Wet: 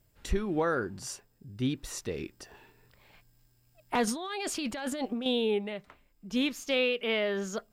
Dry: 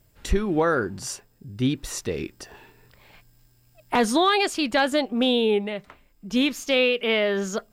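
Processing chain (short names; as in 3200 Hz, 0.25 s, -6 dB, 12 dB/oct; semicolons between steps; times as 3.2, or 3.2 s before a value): 4.07–5.26 negative-ratio compressor -27 dBFS, ratio -1; gain -7 dB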